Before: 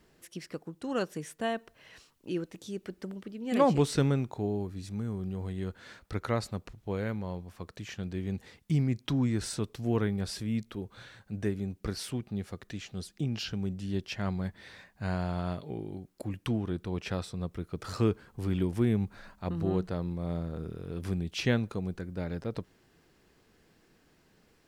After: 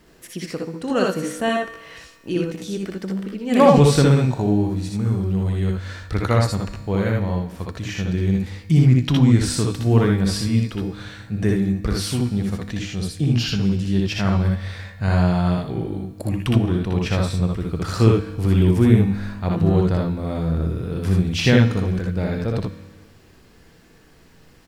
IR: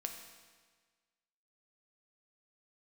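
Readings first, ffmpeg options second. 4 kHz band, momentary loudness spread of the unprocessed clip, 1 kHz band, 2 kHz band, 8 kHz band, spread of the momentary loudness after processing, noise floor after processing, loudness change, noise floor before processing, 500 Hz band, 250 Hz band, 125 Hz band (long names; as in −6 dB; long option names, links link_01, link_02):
+12.0 dB, 13 LU, +11.5 dB, +12.0 dB, +12.0 dB, 13 LU, −50 dBFS, +13.0 dB, −66 dBFS, +11.5 dB, +12.5 dB, +14.5 dB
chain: -filter_complex "[0:a]aecho=1:1:62|78:0.708|0.596,asplit=2[link_01][link_02];[link_02]asubboost=boost=2.5:cutoff=180[link_03];[1:a]atrim=start_sample=2205[link_04];[link_03][link_04]afir=irnorm=-1:irlink=0,volume=1dB[link_05];[link_01][link_05]amix=inputs=2:normalize=0,volume=4dB"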